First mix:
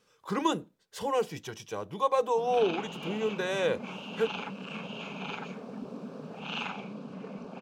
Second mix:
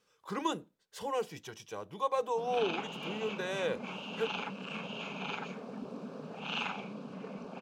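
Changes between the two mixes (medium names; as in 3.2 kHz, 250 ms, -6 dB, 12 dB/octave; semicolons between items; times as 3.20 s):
speech -4.5 dB; master: add bass shelf 360 Hz -3.5 dB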